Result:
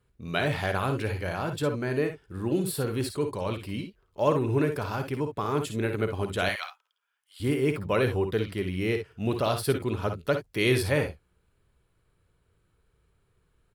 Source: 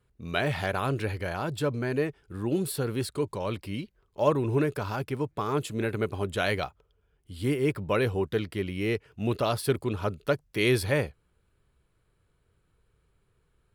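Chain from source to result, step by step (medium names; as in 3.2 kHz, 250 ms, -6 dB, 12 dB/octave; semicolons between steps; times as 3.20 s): 6.49–7.40 s: high-pass 1 kHz 24 dB/octave; on a send: early reflections 54 ms -9 dB, 65 ms -11 dB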